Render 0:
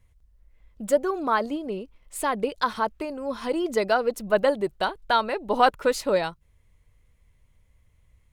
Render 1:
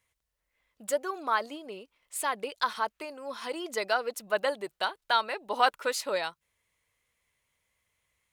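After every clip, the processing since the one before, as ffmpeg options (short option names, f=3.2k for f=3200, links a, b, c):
-af "highpass=f=1.3k:p=1"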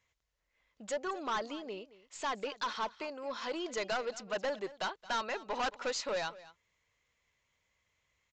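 -af "aeval=exprs='(tanh(31.6*val(0)+0.05)-tanh(0.05))/31.6':c=same,aecho=1:1:222:0.119,aresample=16000,aresample=44100"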